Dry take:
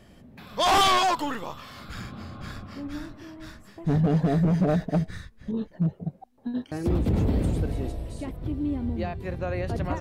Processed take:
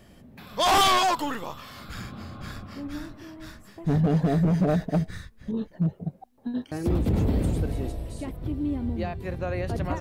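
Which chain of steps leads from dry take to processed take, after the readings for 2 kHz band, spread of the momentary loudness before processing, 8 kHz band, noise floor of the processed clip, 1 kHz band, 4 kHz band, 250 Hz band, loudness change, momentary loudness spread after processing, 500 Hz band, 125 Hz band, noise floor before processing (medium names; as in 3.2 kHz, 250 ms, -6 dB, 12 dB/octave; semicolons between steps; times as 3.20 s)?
0.0 dB, 17 LU, no reading, -54 dBFS, 0.0 dB, +0.5 dB, 0.0 dB, 0.0 dB, 17 LU, 0.0 dB, 0.0 dB, -54 dBFS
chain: treble shelf 11 kHz +7.5 dB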